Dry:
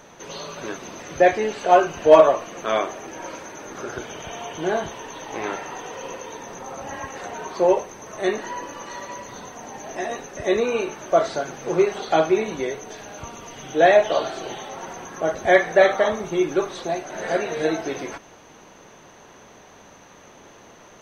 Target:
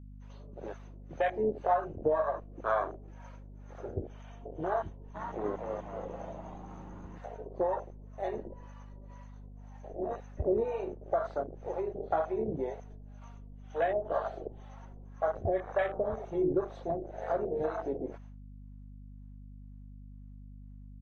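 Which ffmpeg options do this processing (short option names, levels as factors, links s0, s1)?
-filter_complex "[0:a]lowpass=f=1500:p=1,bandreject=f=60:t=h:w=6,bandreject=f=120:t=h:w=6,bandreject=f=180:t=h:w=6,bandreject=f=240:t=h:w=6,bandreject=f=300:t=h:w=6,bandreject=f=360:t=h:w=6,afwtdn=0.0562,agate=range=0.0224:threshold=0.00282:ratio=3:detection=peak,asubboost=boost=9:cutoff=66,acompressor=threshold=0.0794:ratio=12,acrossover=split=570[s0][s1];[s0]aeval=exprs='val(0)*(1-1/2+1/2*cos(2*PI*2*n/s))':c=same[s2];[s1]aeval=exprs='val(0)*(1-1/2-1/2*cos(2*PI*2*n/s))':c=same[s3];[s2][s3]amix=inputs=2:normalize=0,aeval=exprs='val(0)+0.00355*(sin(2*PI*50*n/s)+sin(2*PI*2*50*n/s)/2+sin(2*PI*3*50*n/s)/3+sin(2*PI*4*50*n/s)/4+sin(2*PI*5*50*n/s)/5)':c=same,asplit=3[s4][s5][s6];[s4]afade=t=out:st=5.14:d=0.02[s7];[s5]asplit=7[s8][s9][s10][s11][s12][s13][s14];[s9]adelay=247,afreqshift=130,volume=0.708[s15];[s10]adelay=494,afreqshift=260,volume=0.327[s16];[s11]adelay=741,afreqshift=390,volume=0.15[s17];[s12]adelay=988,afreqshift=520,volume=0.0692[s18];[s13]adelay=1235,afreqshift=650,volume=0.0316[s19];[s14]adelay=1482,afreqshift=780,volume=0.0146[s20];[s8][s15][s16][s17][s18][s19][s20]amix=inputs=7:normalize=0,afade=t=in:st=5.14:d=0.02,afade=t=out:st=7.17:d=0.02[s21];[s6]afade=t=in:st=7.17:d=0.02[s22];[s7][s21][s22]amix=inputs=3:normalize=0,volume=1.26"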